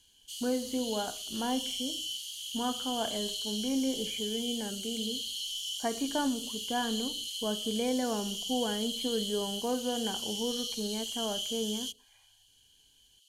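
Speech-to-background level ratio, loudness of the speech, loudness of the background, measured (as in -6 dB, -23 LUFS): 0.5 dB, -35.0 LUFS, -35.5 LUFS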